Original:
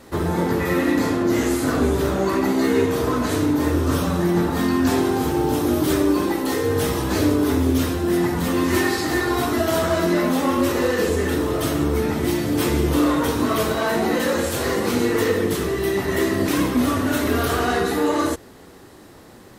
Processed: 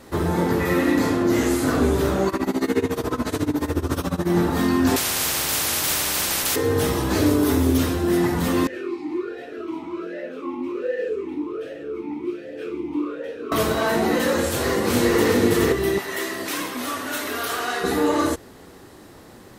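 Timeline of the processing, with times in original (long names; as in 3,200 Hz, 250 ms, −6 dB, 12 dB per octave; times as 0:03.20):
0:02.28–0:04.30: amplitude tremolo 14 Hz, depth 89%
0:04.96–0:06.56: every bin compressed towards the loudest bin 10 to 1
0:07.26–0:07.77: high-shelf EQ 7,000 Hz +6.5 dB
0:08.67–0:13.52: formant filter swept between two vowels e-u 1.3 Hz
0:14.48–0:15.30: delay throw 420 ms, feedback 10%, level −1.5 dB
0:15.98–0:17.84: high-pass filter 1,100 Hz 6 dB per octave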